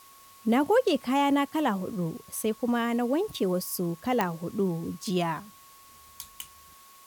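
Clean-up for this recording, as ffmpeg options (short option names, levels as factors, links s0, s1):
-af "adeclick=t=4,bandreject=f=1100:w=30,afwtdn=0.002"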